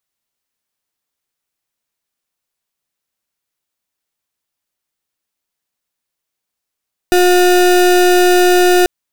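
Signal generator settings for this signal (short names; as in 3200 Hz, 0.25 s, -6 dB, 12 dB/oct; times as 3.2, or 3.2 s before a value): pulse 359 Hz, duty 33% -9.5 dBFS 1.74 s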